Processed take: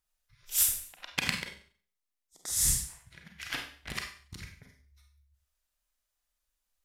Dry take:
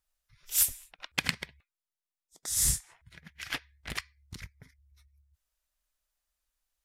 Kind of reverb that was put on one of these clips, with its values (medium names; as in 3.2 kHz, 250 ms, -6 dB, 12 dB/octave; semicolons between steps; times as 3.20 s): Schroeder reverb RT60 0.46 s, combs from 31 ms, DRR 2.5 dB; trim -1.5 dB